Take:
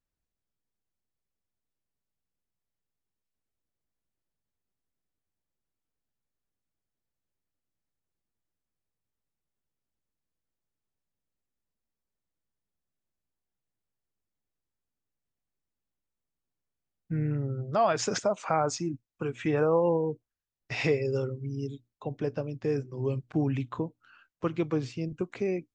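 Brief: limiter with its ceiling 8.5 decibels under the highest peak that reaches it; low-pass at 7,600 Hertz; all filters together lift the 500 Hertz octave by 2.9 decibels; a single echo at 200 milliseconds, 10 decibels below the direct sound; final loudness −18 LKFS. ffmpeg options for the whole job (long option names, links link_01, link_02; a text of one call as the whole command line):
ffmpeg -i in.wav -af "lowpass=7600,equalizer=frequency=500:width_type=o:gain=3.5,alimiter=limit=-19dB:level=0:latency=1,aecho=1:1:200:0.316,volume=12.5dB" out.wav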